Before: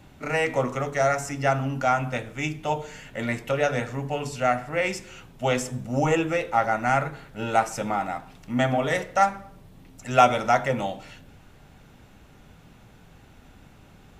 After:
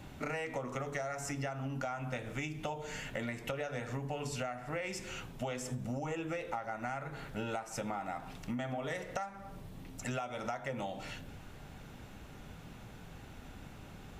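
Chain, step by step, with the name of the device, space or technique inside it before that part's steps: serial compression, peaks first (compression, threshold -31 dBFS, peak gain reduction 18.5 dB; compression 3:1, threshold -37 dBFS, peak gain reduction 8 dB); trim +1 dB

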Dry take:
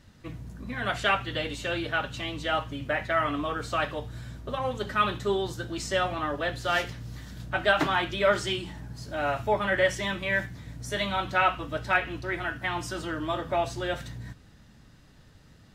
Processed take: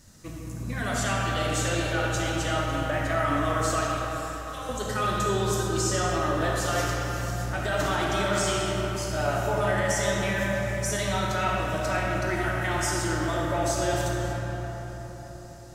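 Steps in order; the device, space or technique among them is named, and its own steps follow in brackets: 3.81–4.69 s: amplifier tone stack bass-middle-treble 10-0-10; over-bright horn tweeter (resonant high shelf 4.7 kHz +11.5 dB, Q 1.5; peak limiter -21 dBFS, peak gain reduction 11 dB); algorithmic reverb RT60 4.6 s, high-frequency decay 0.5×, pre-delay 10 ms, DRR -3 dB

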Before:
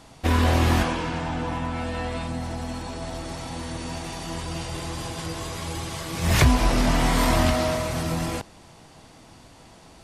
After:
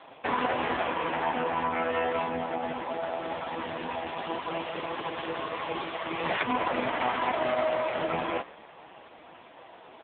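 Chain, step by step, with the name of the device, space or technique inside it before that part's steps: frequency-shifting echo 130 ms, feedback 56%, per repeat -85 Hz, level -22 dB; voicemail (band-pass 410–3300 Hz; compression 10:1, threshold -28 dBFS, peak gain reduction 11 dB; trim +8 dB; AMR-NB 4.75 kbps 8 kHz)

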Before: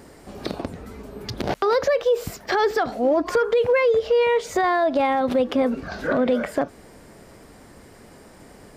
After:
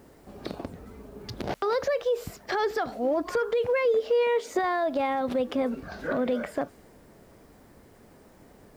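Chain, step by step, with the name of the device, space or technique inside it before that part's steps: 3.85–4.59 s: resonant low shelf 190 Hz -10 dB, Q 3; plain cassette with noise reduction switched in (tape noise reduction on one side only decoder only; wow and flutter 9.2 cents; white noise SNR 39 dB); trim -6.5 dB

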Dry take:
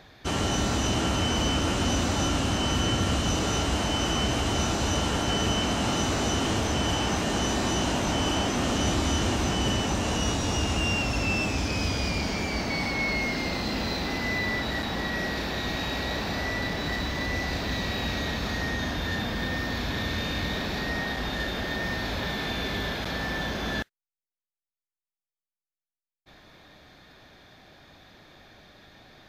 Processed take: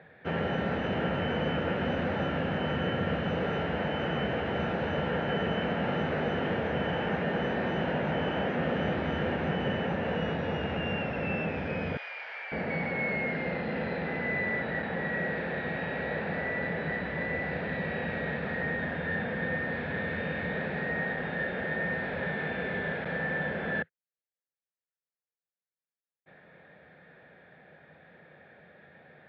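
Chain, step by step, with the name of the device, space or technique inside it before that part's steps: bass cabinet (cabinet simulation 89–2400 Hz, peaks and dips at 110 Hz -10 dB, 160 Hz +7 dB, 300 Hz -7 dB, 500 Hz +9 dB, 1.1 kHz -7 dB, 1.7 kHz +6 dB); 11.97–12.52 s: Bessel high-pass 1.2 kHz, order 4; trim -3 dB

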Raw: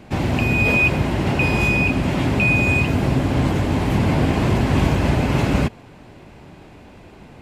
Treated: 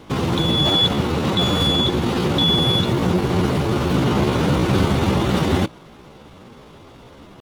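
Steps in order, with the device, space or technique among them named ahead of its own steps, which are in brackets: chipmunk voice (pitch shift +5.5 st)

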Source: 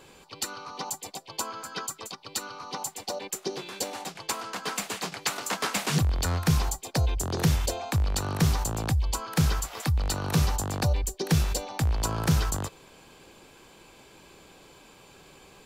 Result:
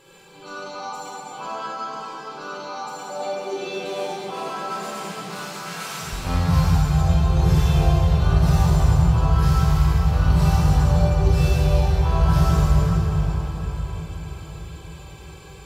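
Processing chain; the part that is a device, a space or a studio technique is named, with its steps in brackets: harmonic-percussive separation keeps harmonic; 5.28–6.13 s: high-pass 1.1 kHz 6 dB/octave; cathedral (reverberation RT60 5.1 s, pre-delay 21 ms, DRR -9.5 dB)

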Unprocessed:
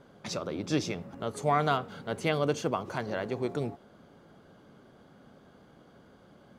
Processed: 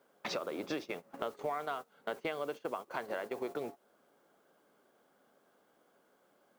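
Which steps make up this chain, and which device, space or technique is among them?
baby monitor (band-pass 400–3100 Hz; compression 8:1, threshold -44 dBFS, peak gain reduction 21 dB; white noise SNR 21 dB; gate -50 dBFS, range -19 dB); trim +9.5 dB

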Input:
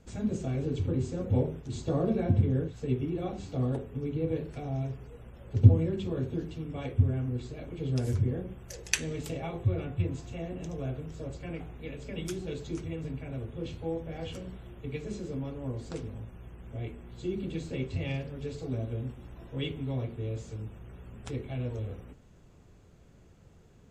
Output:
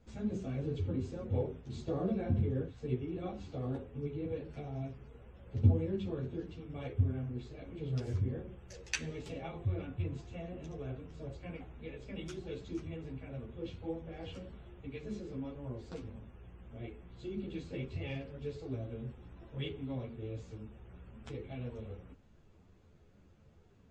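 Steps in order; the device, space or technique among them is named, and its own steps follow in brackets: string-machine ensemble chorus (three-phase chorus; low-pass 5.2 kHz 12 dB/octave); trim -2.5 dB

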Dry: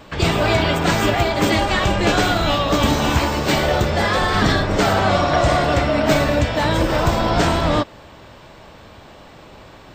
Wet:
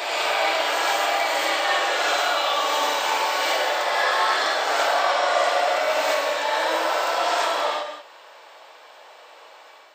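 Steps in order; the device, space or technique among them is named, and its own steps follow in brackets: gated-style reverb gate 210 ms rising, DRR 7.5 dB; ghost voice (reverse; reverberation RT60 1.9 s, pre-delay 25 ms, DRR -4.5 dB; reverse; high-pass 540 Hz 24 dB/octave); trim -7.5 dB

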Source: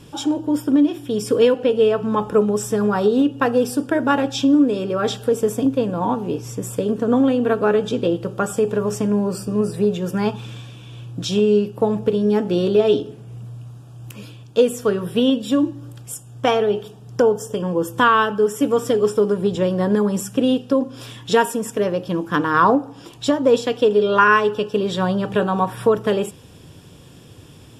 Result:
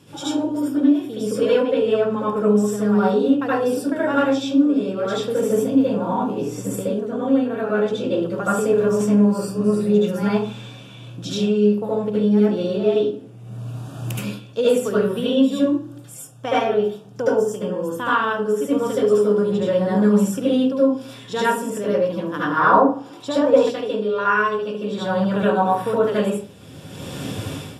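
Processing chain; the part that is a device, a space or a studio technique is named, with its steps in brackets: far laptop microphone (reverberation RT60 0.40 s, pre-delay 68 ms, DRR -8.5 dB; high-pass 120 Hz; level rider gain up to 15 dB); 22.57–23.69 s: peaking EQ 810 Hz +5.5 dB 2.1 oct; trim -6 dB

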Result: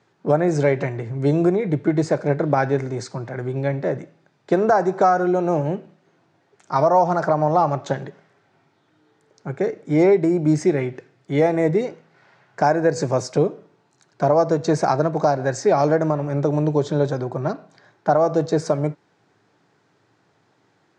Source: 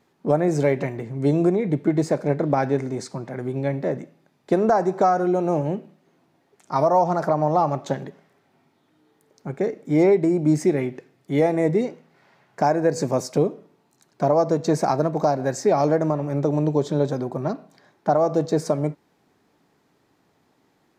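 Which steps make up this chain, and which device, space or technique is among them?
car door speaker (cabinet simulation 110–7700 Hz, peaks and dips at 110 Hz +10 dB, 240 Hz -7 dB, 1.5 kHz +5 dB); trim +2 dB

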